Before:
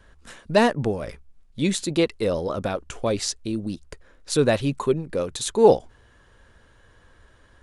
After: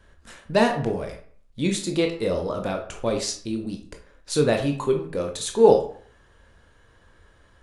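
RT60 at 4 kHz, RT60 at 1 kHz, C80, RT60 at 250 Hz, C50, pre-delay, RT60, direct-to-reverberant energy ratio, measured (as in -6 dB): 0.35 s, 0.55 s, 12.5 dB, 0.55 s, 8.5 dB, 16 ms, 0.50 s, 3.0 dB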